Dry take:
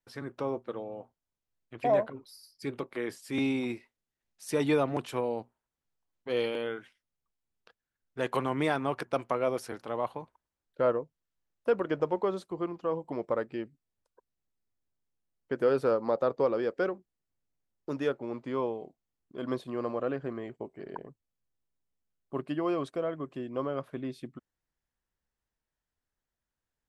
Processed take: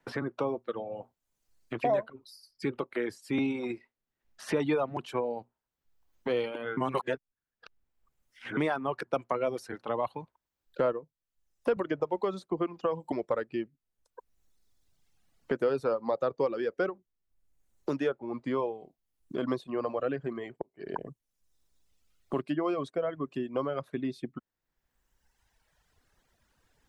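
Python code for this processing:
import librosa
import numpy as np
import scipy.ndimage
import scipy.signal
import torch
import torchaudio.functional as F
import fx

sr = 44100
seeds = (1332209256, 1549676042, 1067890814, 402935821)

y = fx.band_squash(x, sr, depth_pct=70, at=(11.76, 13.12))
y = fx.edit(y, sr, fx.reverse_span(start_s=6.77, length_s=1.8),
    fx.fade_in_span(start_s=20.62, length_s=0.44), tone=tone)
y = fx.dereverb_blind(y, sr, rt60_s=1.5)
y = fx.high_shelf(y, sr, hz=9600.0, db=-9.5)
y = fx.band_squash(y, sr, depth_pct=70)
y = y * 10.0 ** (1.5 / 20.0)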